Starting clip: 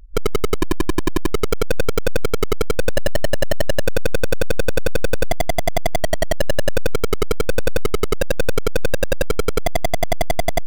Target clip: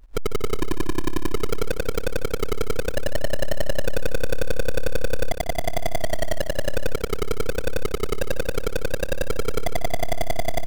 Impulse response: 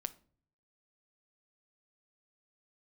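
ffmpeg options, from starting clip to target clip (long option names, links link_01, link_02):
-filter_complex "[0:a]acrusher=bits=5:mode=log:mix=0:aa=0.000001,asplit=2[link_01][link_02];[link_02]aecho=0:1:149|298|447|596|745|894:0.282|0.155|0.0853|0.0469|0.0258|0.0142[link_03];[link_01][link_03]amix=inputs=2:normalize=0,volume=-6dB"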